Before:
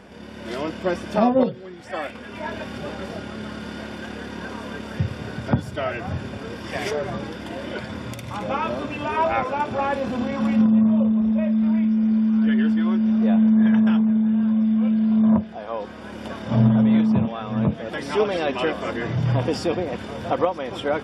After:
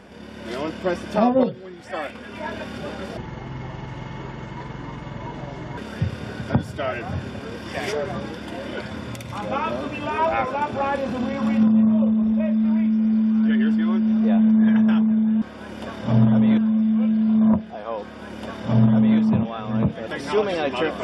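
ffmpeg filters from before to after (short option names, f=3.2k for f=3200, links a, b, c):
-filter_complex "[0:a]asplit=5[a][b][c][d][e];[a]atrim=end=3.174[f];[b]atrim=start=3.17:end=4.76,asetpts=PTS-STARTPTS,asetrate=26901,aresample=44100,atrim=end_sample=114949,asetpts=PTS-STARTPTS[g];[c]atrim=start=4.756:end=14.402[h];[d]atrim=start=15.848:end=17.012[i];[e]atrim=start=14.398[j];[f][g]acrossfade=d=0.004:c1=hsin:c2=hsin[k];[k][h]acrossfade=d=0.004:c1=hsin:c2=hsin[l];[l][i]acrossfade=d=0.004:c1=hsin:c2=hsin[m];[m][j]acrossfade=d=0.004:c1=hsin:c2=hsin"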